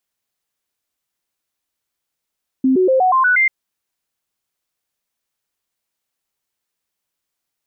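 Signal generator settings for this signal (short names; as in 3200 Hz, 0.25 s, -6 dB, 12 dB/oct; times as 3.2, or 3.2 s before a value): stepped sine 262 Hz up, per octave 2, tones 7, 0.12 s, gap 0.00 s -10.5 dBFS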